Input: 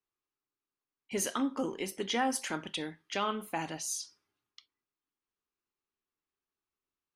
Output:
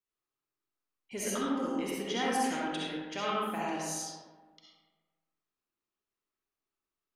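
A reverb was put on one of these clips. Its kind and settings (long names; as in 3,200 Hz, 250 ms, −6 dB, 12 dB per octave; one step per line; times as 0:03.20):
comb and all-pass reverb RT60 1.5 s, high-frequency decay 0.45×, pre-delay 25 ms, DRR −6 dB
level −6 dB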